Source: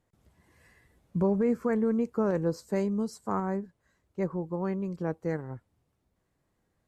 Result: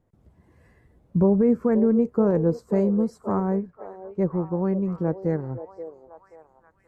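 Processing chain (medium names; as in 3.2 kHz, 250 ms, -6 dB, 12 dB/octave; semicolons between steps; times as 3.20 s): tilt shelf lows +8 dB, about 1.3 kHz; on a send: repeats whose band climbs or falls 530 ms, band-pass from 550 Hz, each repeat 0.7 oct, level -8.5 dB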